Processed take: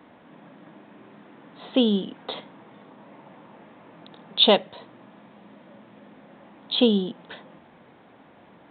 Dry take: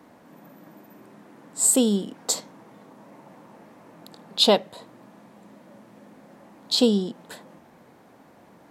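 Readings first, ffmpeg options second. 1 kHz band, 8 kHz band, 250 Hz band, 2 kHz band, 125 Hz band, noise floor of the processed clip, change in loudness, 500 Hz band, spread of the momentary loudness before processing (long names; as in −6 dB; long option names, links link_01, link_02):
+0.5 dB, below −40 dB, 0.0 dB, +3.0 dB, 0.0 dB, −53 dBFS, −1.0 dB, 0.0 dB, 13 LU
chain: -af "aemphasis=mode=production:type=75kf,aresample=8000,aresample=44100"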